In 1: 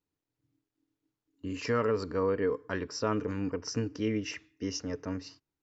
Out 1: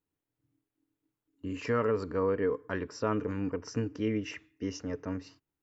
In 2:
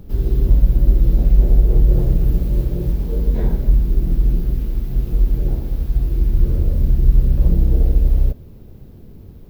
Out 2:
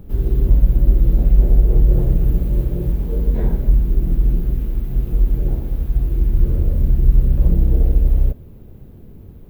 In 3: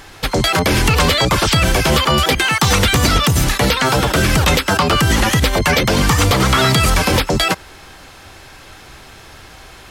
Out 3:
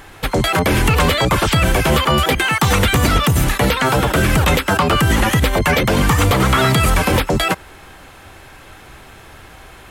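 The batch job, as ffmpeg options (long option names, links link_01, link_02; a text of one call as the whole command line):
ffmpeg -i in.wav -af "equalizer=frequency=5100:width_type=o:width=1:gain=-8.5" out.wav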